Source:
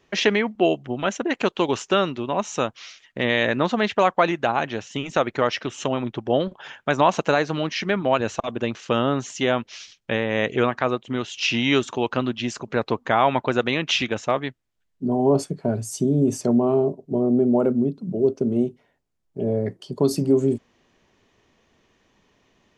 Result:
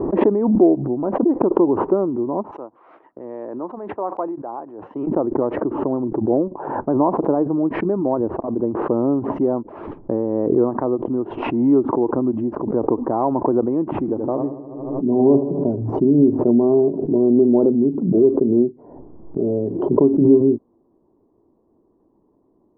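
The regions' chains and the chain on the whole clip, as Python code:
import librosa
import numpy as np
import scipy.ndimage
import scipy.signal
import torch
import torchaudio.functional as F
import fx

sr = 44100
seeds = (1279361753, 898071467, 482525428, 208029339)

y = fx.chain(x, sr, fx.highpass(hz=1300.0, slope=6),
    fx.band_widen(depth_pct=70), at=(2.51, 5.07))
y = fx.chain(y, sr, fx.high_shelf(hz=2500.0, db=-9.5),
    fx.echo_bbd(ms=78, stages=1024, feedback_pct=60, wet_db=-10.0), at=(13.84, 15.76))
y = scipy.signal.sosfilt(scipy.signal.cheby1(4, 1.0, 1000.0, 'lowpass', fs=sr, output='sos'), y)
y = fx.peak_eq(y, sr, hz=320.0, db=13.0, octaves=0.77)
y = fx.pre_swell(y, sr, db_per_s=44.0)
y = F.gain(torch.from_numpy(y), -3.0).numpy()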